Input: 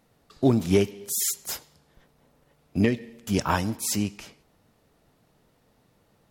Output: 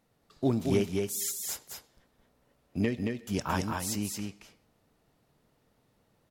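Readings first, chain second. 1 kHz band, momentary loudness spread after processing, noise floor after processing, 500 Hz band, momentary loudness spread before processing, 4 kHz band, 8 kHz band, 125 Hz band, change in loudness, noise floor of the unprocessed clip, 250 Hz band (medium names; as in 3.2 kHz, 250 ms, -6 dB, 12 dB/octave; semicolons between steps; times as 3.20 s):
-5.5 dB, 12 LU, -71 dBFS, -5.5 dB, 11 LU, -5.5 dB, -5.5 dB, -5.5 dB, -6.0 dB, -66 dBFS, -5.5 dB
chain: delay 223 ms -4 dB; trim -7 dB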